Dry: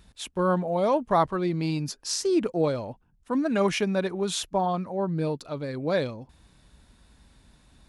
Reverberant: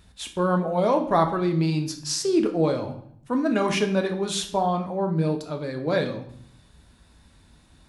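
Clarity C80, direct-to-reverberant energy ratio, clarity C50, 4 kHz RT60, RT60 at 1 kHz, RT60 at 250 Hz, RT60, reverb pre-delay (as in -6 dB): 14.0 dB, 4.5 dB, 10.5 dB, 0.55 s, 0.65 s, 0.85 s, 0.65 s, 9 ms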